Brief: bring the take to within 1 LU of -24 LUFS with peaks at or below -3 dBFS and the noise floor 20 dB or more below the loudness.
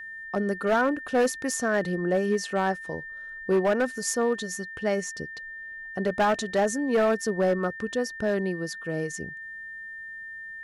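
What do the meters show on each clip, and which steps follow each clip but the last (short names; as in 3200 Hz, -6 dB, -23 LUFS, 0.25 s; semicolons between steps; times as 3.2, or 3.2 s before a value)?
clipped 1.3%; flat tops at -17.5 dBFS; steady tone 1800 Hz; tone level -37 dBFS; loudness -27.0 LUFS; peak -17.5 dBFS; loudness target -24.0 LUFS
-> clip repair -17.5 dBFS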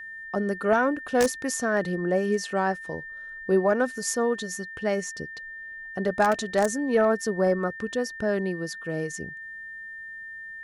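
clipped 0.0%; steady tone 1800 Hz; tone level -37 dBFS
-> notch 1800 Hz, Q 30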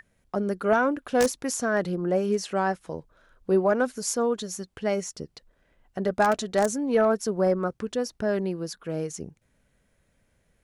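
steady tone none; loudness -26.5 LUFS; peak -8.5 dBFS; loudness target -24.0 LUFS
-> gain +2.5 dB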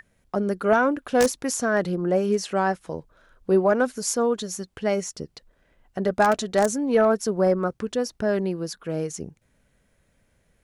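loudness -24.0 LUFS; peak -6.0 dBFS; noise floor -67 dBFS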